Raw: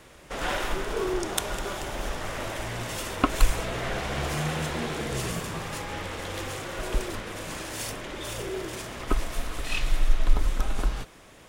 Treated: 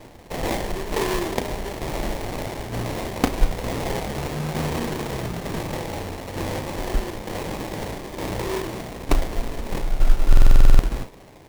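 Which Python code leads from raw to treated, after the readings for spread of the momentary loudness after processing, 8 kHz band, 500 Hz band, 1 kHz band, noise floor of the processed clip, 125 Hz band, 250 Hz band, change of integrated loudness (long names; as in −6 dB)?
10 LU, −1.0 dB, +4.5 dB, +3.0 dB, −45 dBFS, +6.0 dB, +6.0 dB, +4.5 dB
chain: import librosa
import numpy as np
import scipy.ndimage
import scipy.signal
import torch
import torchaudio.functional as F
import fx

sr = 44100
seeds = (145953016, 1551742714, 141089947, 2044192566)

p1 = fx.rider(x, sr, range_db=4, speed_s=2.0)
p2 = x + F.gain(torch.from_numpy(p1), -0.5).numpy()
p3 = fx.sample_hold(p2, sr, seeds[0], rate_hz=1400.0, jitter_pct=20)
p4 = fx.tremolo_shape(p3, sr, shape='saw_down', hz=1.1, depth_pct=50)
p5 = fx.doubler(p4, sr, ms=34.0, db=-10)
y = fx.buffer_glitch(p5, sr, at_s=(10.28,), block=2048, repeats=10)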